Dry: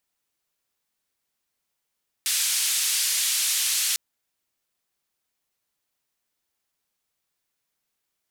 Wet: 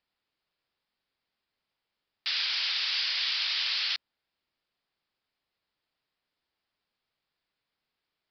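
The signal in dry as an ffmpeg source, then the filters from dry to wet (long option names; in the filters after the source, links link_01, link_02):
-f lavfi -i "anoisesrc=color=white:duration=1.7:sample_rate=44100:seed=1,highpass=frequency=2700,lowpass=frequency=11000,volume=-14.9dB"
-af "aresample=11025,aresample=44100"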